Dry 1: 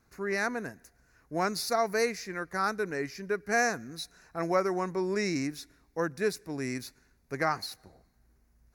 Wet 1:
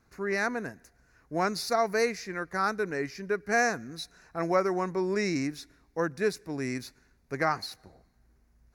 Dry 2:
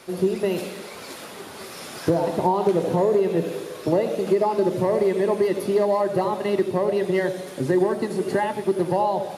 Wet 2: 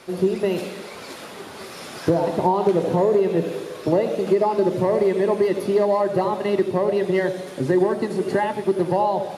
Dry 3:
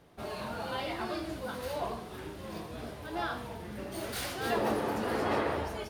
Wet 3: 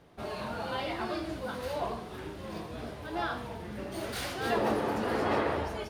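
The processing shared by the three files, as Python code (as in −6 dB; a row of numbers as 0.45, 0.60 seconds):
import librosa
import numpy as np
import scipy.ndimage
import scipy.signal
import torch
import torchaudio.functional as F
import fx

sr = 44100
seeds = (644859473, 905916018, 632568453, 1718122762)

y = fx.high_shelf(x, sr, hz=9000.0, db=-8.0)
y = y * 10.0 ** (1.5 / 20.0)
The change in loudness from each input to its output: +1.5, +1.5, +1.5 LU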